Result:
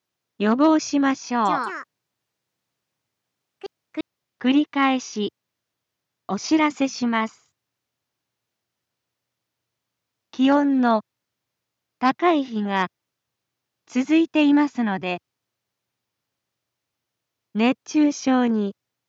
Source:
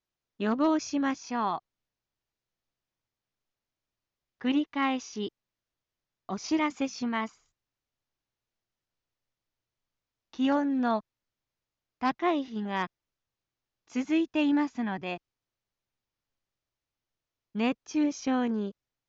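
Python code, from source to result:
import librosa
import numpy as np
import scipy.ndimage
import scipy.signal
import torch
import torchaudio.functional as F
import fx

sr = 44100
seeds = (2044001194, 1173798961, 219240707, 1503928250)

y = scipy.signal.sosfilt(scipy.signal.butter(4, 89.0, 'highpass', fs=sr, output='sos'), x)
y = fx.echo_pitch(y, sr, ms=183, semitones=4, count=2, db_per_echo=-6.0, at=(1.27, 4.49))
y = y * librosa.db_to_amplitude(8.5)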